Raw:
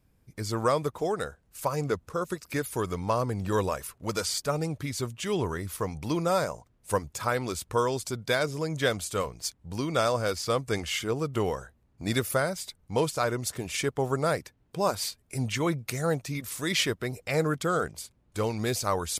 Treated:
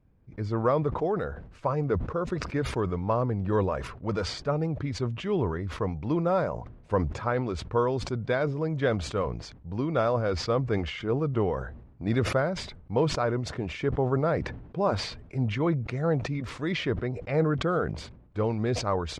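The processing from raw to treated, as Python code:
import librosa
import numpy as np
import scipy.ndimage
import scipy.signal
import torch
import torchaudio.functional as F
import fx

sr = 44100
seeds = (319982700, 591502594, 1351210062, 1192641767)

y = fx.spacing_loss(x, sr, db_at_10k=41)
y = fx.sustainer(y, sr, db_per_s=68.0)
y = y * 10.0 ** (3.0 / 20.0)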